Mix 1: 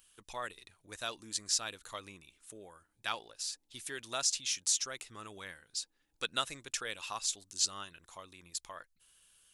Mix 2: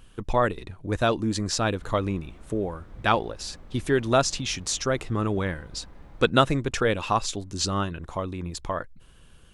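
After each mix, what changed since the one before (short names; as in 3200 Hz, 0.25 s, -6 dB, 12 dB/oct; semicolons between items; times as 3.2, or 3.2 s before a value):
background: remove vocal tract filter u; master: remove pre-emphasis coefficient 0.97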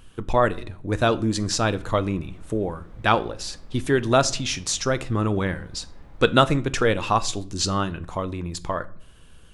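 reverb: on, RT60 0.55 s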